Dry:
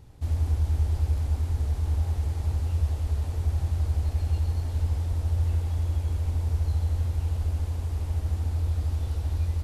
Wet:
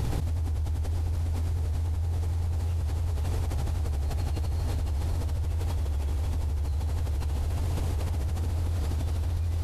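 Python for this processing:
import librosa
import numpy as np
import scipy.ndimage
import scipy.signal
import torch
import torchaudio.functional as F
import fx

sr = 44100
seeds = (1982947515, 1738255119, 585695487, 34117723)

y = fx.echo_feedback(x, sr, ms=528, feedback_pct=42, wet_db=-5)
y = fx.env_flatten(y, sr, amount_pct=100)
y = F.gain(torch.from_numpy(y), -8.0).numpy()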